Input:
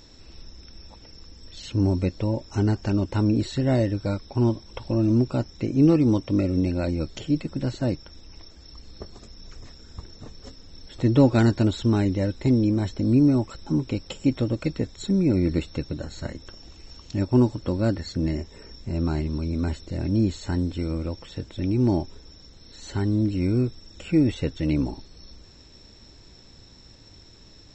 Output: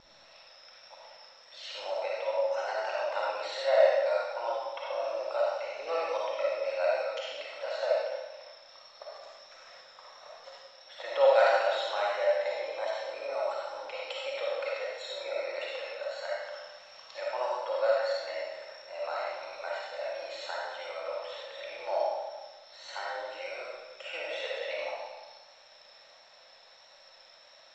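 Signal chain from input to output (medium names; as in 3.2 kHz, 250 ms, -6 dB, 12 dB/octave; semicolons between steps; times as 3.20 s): Chebyshev high-pass 530 Hz, order 6; vibrato 1.5 Hz 26 cents; in parallel at -10.5 dB: word length cut 8-bit, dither none; on the sum: distance through air 180 m; algorithmic reverb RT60 1.2 s, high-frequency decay 0.9×, pre-delay 15 ms, DRR -5 dB; trim -2 dB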